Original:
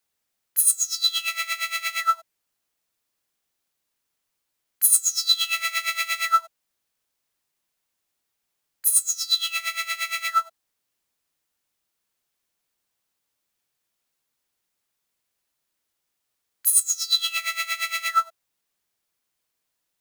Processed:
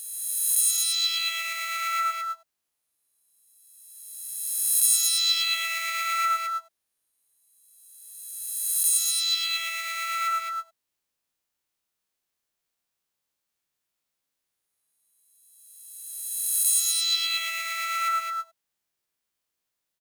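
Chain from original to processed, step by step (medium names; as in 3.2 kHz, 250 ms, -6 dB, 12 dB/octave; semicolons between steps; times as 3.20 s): reverse spectral sustain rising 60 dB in 1.93 s; on a send: delay 214 ms -5.5 dB; on the sum: trim -8.5 dB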